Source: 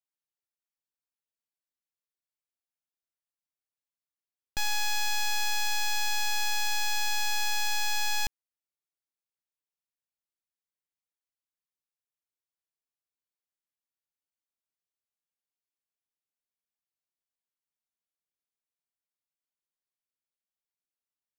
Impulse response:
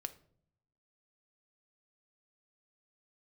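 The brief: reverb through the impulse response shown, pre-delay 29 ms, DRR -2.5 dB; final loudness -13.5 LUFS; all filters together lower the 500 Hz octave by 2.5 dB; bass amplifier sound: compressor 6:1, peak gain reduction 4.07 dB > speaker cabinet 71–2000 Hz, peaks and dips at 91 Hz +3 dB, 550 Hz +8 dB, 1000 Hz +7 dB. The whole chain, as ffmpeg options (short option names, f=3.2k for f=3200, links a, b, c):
-filter_complex "[0:a]equalizer=f=500:t=o:g=-8,asplit=2[a][b];[1:a]atrim=start_sample=2205,adelay=29[c];[b][c]afir=irnorm=-1:irlink=0,volume=5dB[d];[a][d]amix=inputs=2:normalize=0,acompressor=threshold=-19dB:ratio=6,highpass=f=71:w=0.5412,highpass=f=71:w=1.3066,equalizer=f=91:t=q:w=4:g=3,equalizer=f=550:t=q:w=4:g=8,equalizer=f=1k:t=q:w=4:g=7,lowpass=f=2k:w=0.5412,lowpass=f=2k:w=1.3066,volume=22.5dB"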